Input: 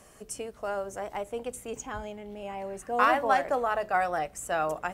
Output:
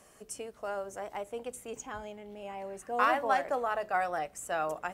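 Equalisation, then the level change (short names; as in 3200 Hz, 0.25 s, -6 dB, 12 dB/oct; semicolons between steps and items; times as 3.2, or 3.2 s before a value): low shelf 130 Hz -7.5 dB; -3.5 dB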